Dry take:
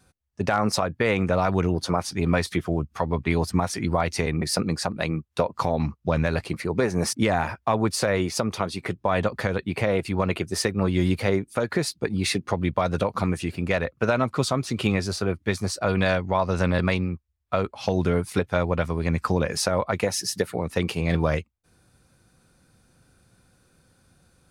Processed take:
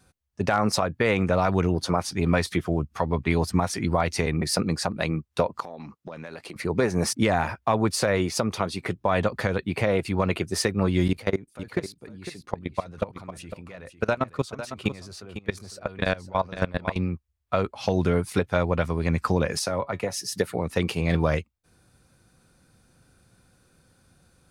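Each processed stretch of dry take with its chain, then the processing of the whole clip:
5.6–6.56 HPF 230 Hz + compressor, threshold -35 dBFS
11.08–16.96 level quantiser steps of 21 dB + echo 0.503 s -11 dB
19.59–20.32 notch 1600 Hz, Q 17 + resonator 140 Hz, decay 0.15 s, mix 50% + three-band expander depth 40%
whole clip: dry

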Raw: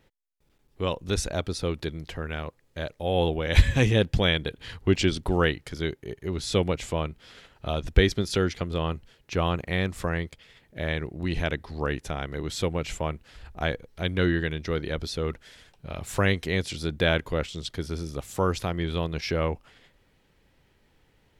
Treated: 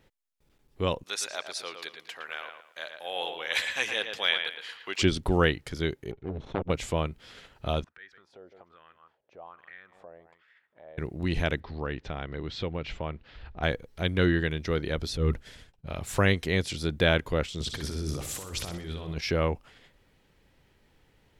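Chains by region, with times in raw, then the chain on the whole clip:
1.03–5.02 HPF 1000 Hz + dark delay 0.113 s, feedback 31%, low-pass 3700 Hz, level -6.5 dB
6.11–6.7 minimum comb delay 0.32 ms + tape spacing loss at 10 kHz 44 dB + core saturation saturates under 780 Hz
7.84–10.98 echo 0.156 s -17.5 dB + compressor 4:1, threshold -34 dBFS + wah 1.2 Hz 590–1700 Hz, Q 4.2
11.6–13.63 LPF 4300 Hz 24 dB/oct + compressor 1.5:1, threshold -36 dBFS
15.08–15.87 expander -49 dBFS + low shelf 280 Hz +9.5 dB + transient shaper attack -9 dB, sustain +2 dB
17.6–19.17 negative-ratio compressor -36 dBFS + flutter echo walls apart 10.7 m, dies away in 0.53 s
whole clip: dry

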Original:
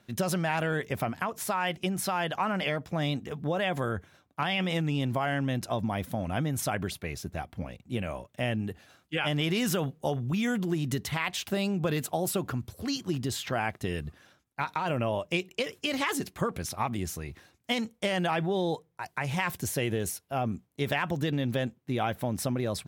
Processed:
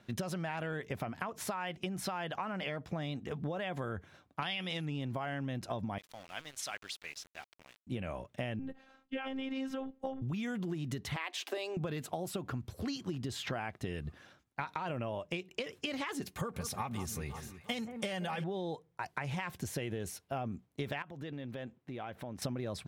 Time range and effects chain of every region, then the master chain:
4.41–4.84 bell 4100 Hz +11.5 dB 1.7 oct + whine 11000 Hz -51 dBFS
5.98–7.87 band-pass 5000 Hz, Q 0.72 + sample gate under -49 dBFS
8.59–10.22 LPF 1800 Hz 6 dB/oct + robotiser 266 Hz
11.16–11.77 steep high-pass 270 Hz 72 dB/oct + notch 1400 Hz, Q 11
16.22–18.44 high shelf 6300 Hz +12 dB + notch comb 330 Hz + echo with dull and thin repeats by turns 0.175 s, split 1600 Hz, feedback 65%, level -12 dB
21.02–22.42 tone controls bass -4 dB, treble -6 dB + compressor 3:1, threshold -44 dBFS
whole clip: high shelf 8200 Hz -11.5 dB; compressor 10:1, threshold -35 dBFS; gain +1 dB

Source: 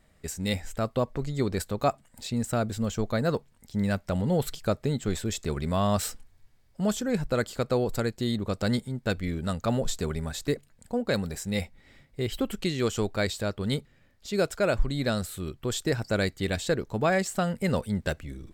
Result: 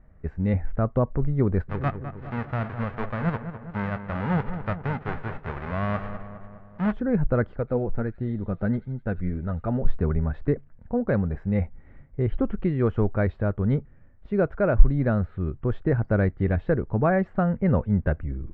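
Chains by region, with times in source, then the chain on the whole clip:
1.68–6.91 spectral whitening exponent 0.1 + darkening echo 0.205 s, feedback 60%, level -10 dB
7.56–9.85 flange 1.5 Hz, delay 1.1 ms, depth 5 ms, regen +58% + notch 1100 Hz, Q 9 + thin delay 85 ms, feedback 62%, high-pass 3500 Hz, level -9.5 dB
whole clip: LPF 1700 Hz 24 dB/oct; low shelf 140 Hz +11.5 dB; gain +1.5 dB

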